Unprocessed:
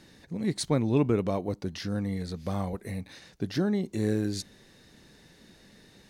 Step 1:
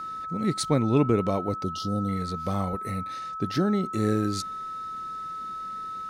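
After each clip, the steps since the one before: time-frequency box 1.64–2.08 s, 870–2800 Hz -28 dB; whistle 1.3 kHz -35 dBFS; trim +2.5 dB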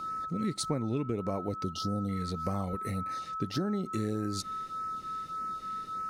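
compression 6:1, threshold -28 dBFS, peak gain reduction 11.5 dB; LFO notch sine 1.7 Hz 680–3600 Hz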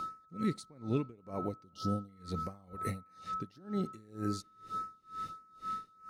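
reverberation RT60 2.7 s, pre-delay 62 ms, DRR 19 dB; logarithmic tremolo 2.1 Hz, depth 28 dB; trim +1 dB

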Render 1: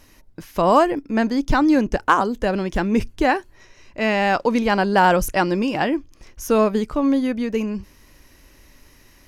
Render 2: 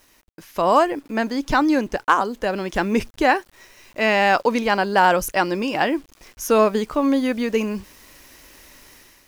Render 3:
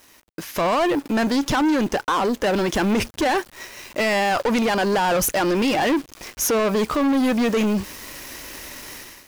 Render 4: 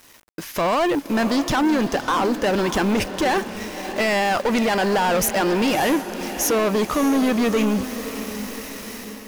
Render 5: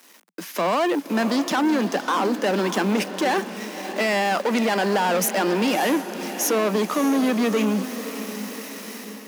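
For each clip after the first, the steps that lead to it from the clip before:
bass shelf 230 Hz -11.5 dB; bit crusher 9-bit; level rider gain up to 9 dB; trim -3 dB
high-pass 85 Hz 6 dB/octave; peak limiter -15.5 dBFS, peak gain reduction 11.5 dB; waveshaping leveller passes 3
bit crusher 8-bit; echo that smears into a reverb 602 ms, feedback 52%, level -11 dB
steep high-pass 170 Hz 96 dB/octave; trim -1.5 dB

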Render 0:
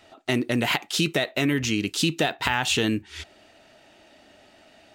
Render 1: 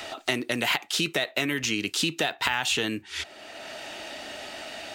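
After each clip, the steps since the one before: bass shelf 360 Hz -11 dB; three bands compressed up and down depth 70%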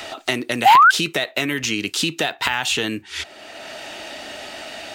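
painted sound rise, 0.65–0.91 s, 730–1600 Hz -14 dBFS; trim +4.5 dB

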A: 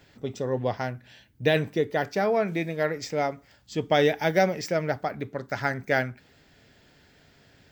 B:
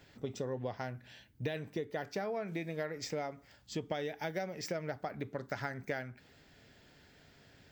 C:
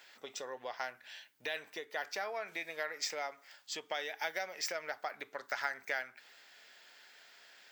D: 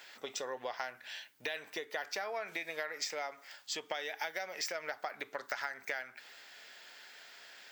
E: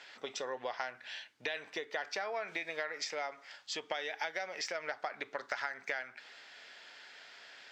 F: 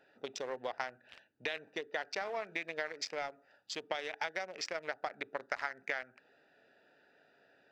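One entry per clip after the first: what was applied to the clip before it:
compression 12:1, threshold -30 dBFS, peak gain reduction 14.5 dB; trim -3.5 dB
high-pass 960 Hz 12 dB/octave; trim +6 dB
compression 4:1, threshold -40 dBFS, peak gain reduction 9.5 dB; trim +5 dB
low-pass 5.6 kHz 12 dB/octave; trim +1 dB
local Wiener filter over 41 samples; trim +1.5 dB

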